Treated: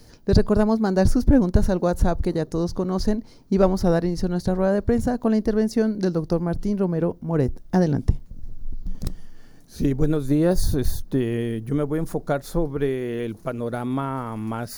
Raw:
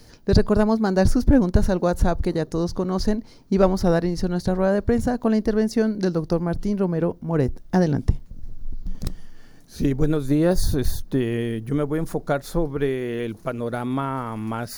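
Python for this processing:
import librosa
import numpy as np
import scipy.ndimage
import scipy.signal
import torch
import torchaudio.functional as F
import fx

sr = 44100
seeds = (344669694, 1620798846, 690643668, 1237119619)

y = fx.peak_eq(x, sr, hz=2400.0, db=-3.0, octaves=2.6)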